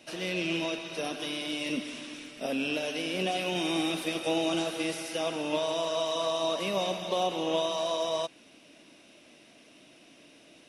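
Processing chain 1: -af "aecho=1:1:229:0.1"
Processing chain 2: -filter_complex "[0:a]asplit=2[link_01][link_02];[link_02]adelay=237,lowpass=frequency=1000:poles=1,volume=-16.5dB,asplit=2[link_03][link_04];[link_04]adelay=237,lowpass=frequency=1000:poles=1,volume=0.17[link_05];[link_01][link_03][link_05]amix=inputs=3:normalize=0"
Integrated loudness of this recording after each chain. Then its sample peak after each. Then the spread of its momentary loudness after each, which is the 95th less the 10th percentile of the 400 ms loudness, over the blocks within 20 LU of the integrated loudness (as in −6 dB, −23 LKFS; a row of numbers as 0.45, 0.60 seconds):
−30.5, −30.5 LKFS; −17.0, −17.0 dBFS; 5, 5 LU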